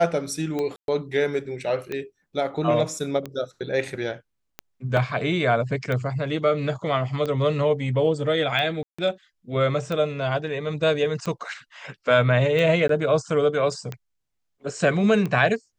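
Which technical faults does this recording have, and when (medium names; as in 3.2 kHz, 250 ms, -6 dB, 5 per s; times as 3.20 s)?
tick 45 rpm -16 dBFS
0.76–0.88 s: dropout 122 ms
4.97 s: dropout 2.6 ms
8.83–8.98 s: dropout 155 ms
12.88–12.89 s: dropout 13 ms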